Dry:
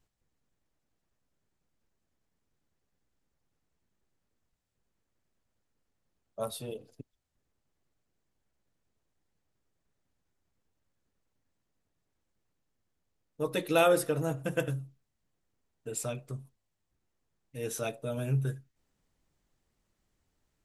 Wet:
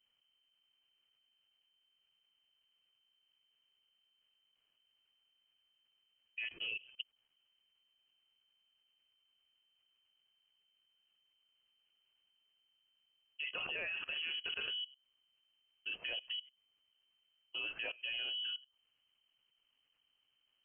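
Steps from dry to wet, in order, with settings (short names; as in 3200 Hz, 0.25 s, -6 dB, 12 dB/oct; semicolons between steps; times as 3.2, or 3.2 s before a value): dynamic EQ 2200 Hz, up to +5 dB, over -45 dBFS, Q 0.92; in parallel at +1.5 dB: compressor 6:1, threshold -39 dBFS, peak gain reduction 19.5 dB; on the sum: limiter -20.5 dBFS, peak gain reduction 11.5 dB; level quantiser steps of 20 dB; inverted band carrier 3100 Hz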